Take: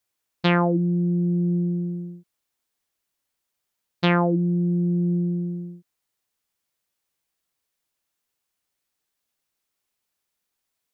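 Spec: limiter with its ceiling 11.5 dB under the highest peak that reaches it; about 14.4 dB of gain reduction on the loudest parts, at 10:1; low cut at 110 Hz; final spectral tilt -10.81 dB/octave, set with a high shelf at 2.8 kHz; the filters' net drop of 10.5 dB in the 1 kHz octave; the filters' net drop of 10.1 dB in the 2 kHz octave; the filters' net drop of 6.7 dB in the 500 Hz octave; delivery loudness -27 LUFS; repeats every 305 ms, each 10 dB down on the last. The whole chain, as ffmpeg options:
-af "highpass=110,equalizer=f=500:t=o:g=-8,equalizer=f=1000:t=o:g=-8.5,equalizer=f=2000:t=o:g=-7,highshelf=f=2800:g=-6.5,acompressor=threshold=0.02:ratio=10,alimiter=level_in=2.82:limit=0.0631:level=0:latency=1,volume=0.355,aecho=1:1:305|610|915|1220:0.316|0.101|0.0324|0.0104,volume=4.22"

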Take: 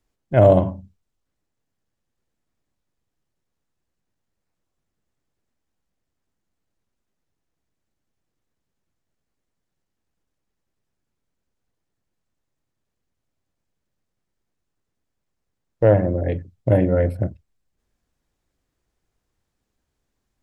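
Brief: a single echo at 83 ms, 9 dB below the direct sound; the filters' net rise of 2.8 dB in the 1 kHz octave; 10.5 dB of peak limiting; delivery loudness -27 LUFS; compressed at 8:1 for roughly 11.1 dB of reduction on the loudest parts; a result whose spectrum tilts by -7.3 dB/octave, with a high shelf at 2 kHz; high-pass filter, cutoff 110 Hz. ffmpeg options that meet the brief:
-af "highpass=110,equalizer=f=1000:t=o:g=6,highshelf=f=2000:g=-6.5,acompressor=threshold=0.112:ratio=8,alimiter=limit=0.1:level=0:latency=1,aecho=1:1:83:0.355,volume=1.58"

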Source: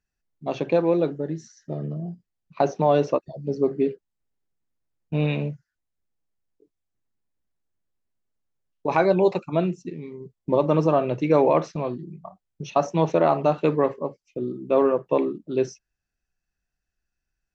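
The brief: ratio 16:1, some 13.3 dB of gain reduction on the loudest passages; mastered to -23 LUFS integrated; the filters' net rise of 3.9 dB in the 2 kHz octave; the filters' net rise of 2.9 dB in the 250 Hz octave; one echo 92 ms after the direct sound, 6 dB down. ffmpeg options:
-af "equalizer=f=250:t=o:g=4,equalizer=f=2000:t=o:g=5.5,acompressor=threshold=0.0501:ratio=16,aecho=1:1:92:0.501,volume=2.82"

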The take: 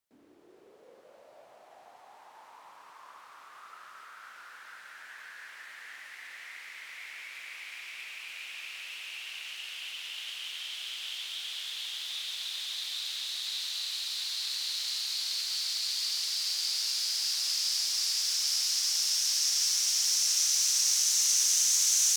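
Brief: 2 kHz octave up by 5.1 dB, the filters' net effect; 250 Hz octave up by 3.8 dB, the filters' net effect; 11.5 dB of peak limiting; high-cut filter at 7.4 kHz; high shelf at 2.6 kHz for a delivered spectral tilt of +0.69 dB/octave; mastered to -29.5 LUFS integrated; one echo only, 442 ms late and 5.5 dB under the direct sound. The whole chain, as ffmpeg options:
-af "lowpass=7400,equalizer=f=250:t=o:g=5,equalizer=f=2000:t=o:g=3.5,highshelf=f=2600:g=5.5,alimiter=limit=0.0891:level=0:latency=1,aecho=1:1:442:0.531,volume=0.841"

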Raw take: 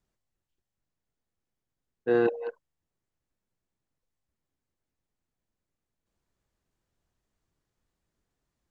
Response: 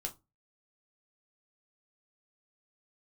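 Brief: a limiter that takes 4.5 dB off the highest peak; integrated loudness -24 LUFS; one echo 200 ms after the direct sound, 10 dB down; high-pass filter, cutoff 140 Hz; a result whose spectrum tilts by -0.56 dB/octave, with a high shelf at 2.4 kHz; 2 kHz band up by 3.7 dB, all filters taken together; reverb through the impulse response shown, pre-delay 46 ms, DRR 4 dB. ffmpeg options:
-filter_complex "[0:a]highpass=140,equalizer=f=2000:t=o:g=4,highshelf=f=2400:g=3,alimiter=limit=0.141:level=0:latency=1,aecho=1:1:200:0.316,asplit=2[s0][s1];[1:a]atrim=start_sample=2205,adelay=46[s2];[s1][s2]afir=irnorm=-1:irlink=0,volume=0.708[s3];[s0][s3]amix=inputs=2:normalize=0,volume=1.58"

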